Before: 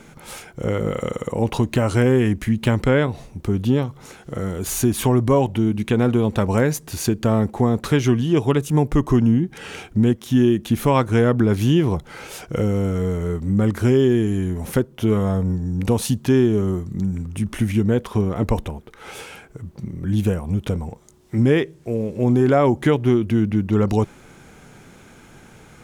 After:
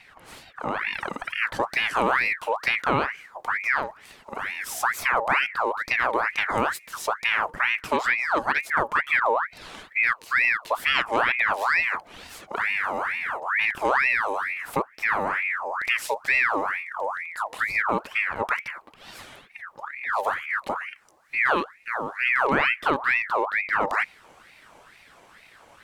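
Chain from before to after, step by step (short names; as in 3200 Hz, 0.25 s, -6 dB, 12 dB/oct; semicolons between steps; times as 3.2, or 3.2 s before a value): high shelf 4300 Hz -8 dB, from 0.93 s -2 dB; ring modulator with a swept carrier 1500 Hz, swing 55%, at 2.2 Hz; gain -3.5 dB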